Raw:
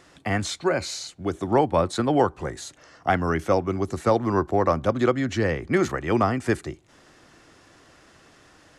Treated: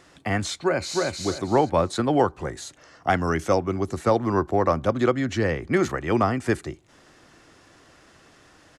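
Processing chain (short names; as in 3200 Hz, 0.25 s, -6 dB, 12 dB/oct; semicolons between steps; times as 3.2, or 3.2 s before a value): 0.57–1.07 echo throw 0.31 s, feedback 25%, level -2 dB; 3.09–3.56 bell 6900 Hz +7 dB 1.2 oct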